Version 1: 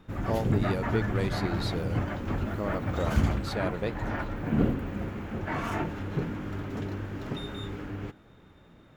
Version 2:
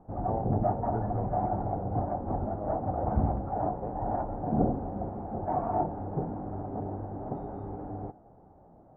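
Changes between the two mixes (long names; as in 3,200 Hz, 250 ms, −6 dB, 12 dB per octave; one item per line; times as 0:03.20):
background +9.0 dB
master: add transistor ladder low-pass 810 Hz, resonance 75%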